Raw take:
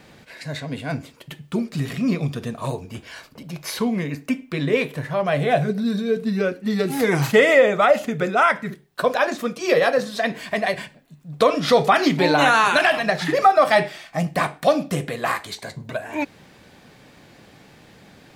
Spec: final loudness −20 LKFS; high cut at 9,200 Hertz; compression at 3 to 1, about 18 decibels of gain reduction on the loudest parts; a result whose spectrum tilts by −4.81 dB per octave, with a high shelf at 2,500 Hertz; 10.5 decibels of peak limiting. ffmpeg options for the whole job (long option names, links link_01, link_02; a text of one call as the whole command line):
ffmpeg -i in.wav -af "lowpass=9200,highshelf=frequency=2500:gain=-3.5,acompressor=threshold=-36dB:ratio=3,volume=18.5dB,alimiter=limit=-10dB:level=0:latency=1" out.wav